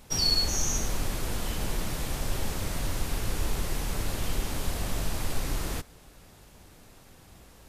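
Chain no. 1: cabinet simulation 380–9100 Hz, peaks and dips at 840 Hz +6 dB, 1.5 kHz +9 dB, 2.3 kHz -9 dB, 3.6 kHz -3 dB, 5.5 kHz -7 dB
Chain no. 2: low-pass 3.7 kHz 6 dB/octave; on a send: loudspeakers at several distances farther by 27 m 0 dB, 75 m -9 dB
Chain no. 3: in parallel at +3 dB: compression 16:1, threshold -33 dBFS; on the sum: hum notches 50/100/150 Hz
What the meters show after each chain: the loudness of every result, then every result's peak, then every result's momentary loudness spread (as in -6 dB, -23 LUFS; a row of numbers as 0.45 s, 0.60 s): -34.5 LUFS, -30.0 LUFS, -28.0 LUFS; -18.0 dBFS, -12.5 dBFS, -11.0 dBFS; 9 LU, 6 LU, 23 LU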